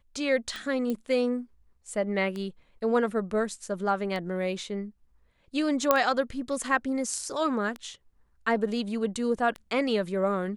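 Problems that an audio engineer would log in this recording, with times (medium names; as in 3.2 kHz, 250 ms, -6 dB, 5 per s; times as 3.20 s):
tick 33 1/3 rpm -22 dBFS
0.90 s: pop -19 dBFS
5.91 s: pop -6 dBFS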